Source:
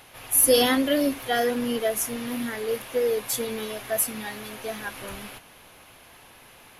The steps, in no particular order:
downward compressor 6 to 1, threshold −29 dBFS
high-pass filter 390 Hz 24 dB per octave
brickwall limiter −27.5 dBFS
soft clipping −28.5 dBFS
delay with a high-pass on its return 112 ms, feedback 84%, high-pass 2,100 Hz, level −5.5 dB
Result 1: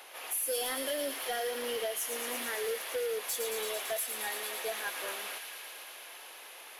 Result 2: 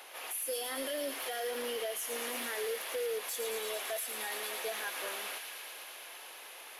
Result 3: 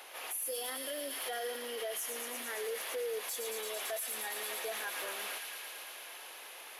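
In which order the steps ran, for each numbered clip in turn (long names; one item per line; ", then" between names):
high-pass filter, then downward compressor, then soft clipping, then brickwall limiter, then delay with a high-pass on its return
high-pass filter, then downward compressor, then brickwall limiter, then soft clipping, then delay with a high-pass on its return
downward compressor, then delay with a high-pass on its return, then brickwall limiter, then high-pass filter, then soft clipping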